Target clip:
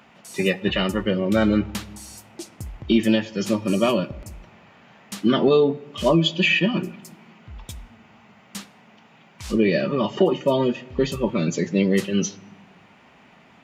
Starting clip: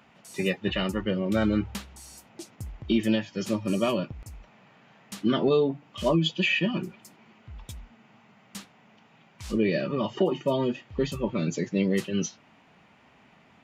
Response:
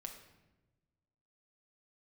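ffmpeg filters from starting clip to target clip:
-filter_complex "[0:a]asplit=2[s0][s1];[s1]highpass=f=86:w=0.5412,highpass=f=86:w=1.3066[s2];[1:a]atrim=start_sample=2205[s3];[s2][s3]afir=irnorm=-1:irlink=0,volume=0.447[s4];[s0][s4]amix=inputs=2:normalize=0,volume=1.58"

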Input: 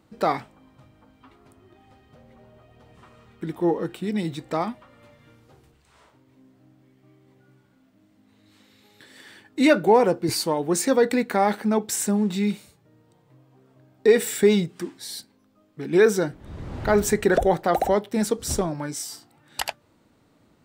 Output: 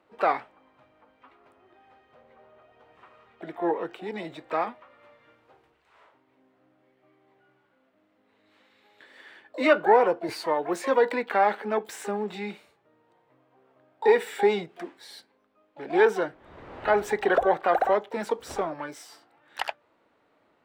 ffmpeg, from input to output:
-filter_complex "[0:a]asplit=2[s0][s1];[s1]asetrate=88200,aresample=44100,atempo=0.5,volume=0.224[s2];[s0][s2]amix=inputs=2:normalize=0,acrossover=split=380 3200:gain=0.126 1 0.126[s3][s4][s5];[s3][s4][s5]amix=inputs=3:normalize=0"

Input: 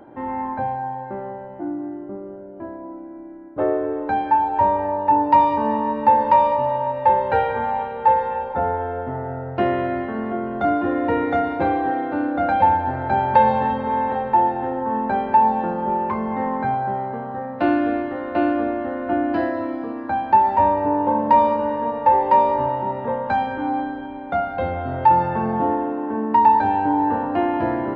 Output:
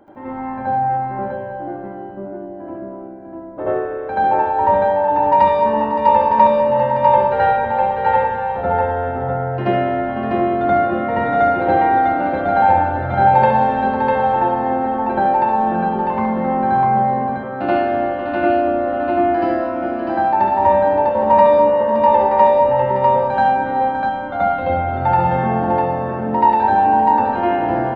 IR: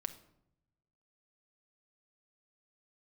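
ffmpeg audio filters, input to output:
-filter_complex "[0:a]aecho=1:1:70|502|649:0.473|0.2|0.668,asplit=2[s0][s1];[1:a]atrim=start_sample=2205,adelay=80[s2];[s1][s2]afir=irnorm=-1:irlink=0,volume=2.51[s3];[s0][s3]amix=inputs=2:normalize=0,volume=0.531"

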